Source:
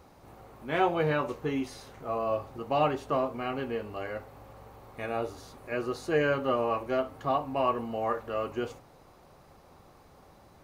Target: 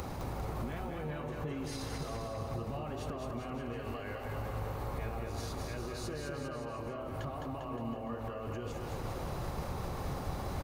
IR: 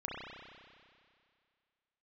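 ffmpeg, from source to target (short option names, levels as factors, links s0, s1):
-filter_complex "[0:a]asettb=1/sr,asplit=3[s0][s1][s2];[s0]atrim=end=3.734[s3];[s1]atrim=start=3.73:end=4.25,asetpts=PTS-STARTPTS,afade=t=in:d=0.004:c=qsin,afade=t=out:st=0.516:d=0.004:c=qsin,equalizer=f=170:t=o:w=2.6:g=-14.5[s4];[s2]atrim=start=4.246[s5];[s3][s4]acrossfade=d=0.004:c1=hsin:c2=qsin[s6];[s6][s5]acrossfade=d=0.004:c1=qsin:c2=hsin,acompressor=mode=upward:threshold=0.0224:ratio=2.5,alimiter=level_in=6.31:limit=0.0631:level=0:latency=1:release=118,volume=0.158,acrossover=split=160[s7][s8];[s8]acompressor=threshold=0.001:ratio=2.5[s9];[s7][s9]amix=inputs=2:normalize=0,asplit=2[s10][s11];[s11]aecho=0:1:210|399|569.1|722.2|860:0.631|0.398|0.251|0.158|0.1[s12];[s10][s12]amix=inputs=2:normalize=0,volume=5.01"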